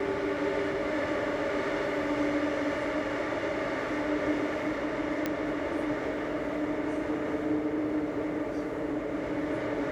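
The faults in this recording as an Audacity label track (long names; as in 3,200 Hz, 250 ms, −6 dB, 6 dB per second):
5.260000	5.260000	click −15 dBFS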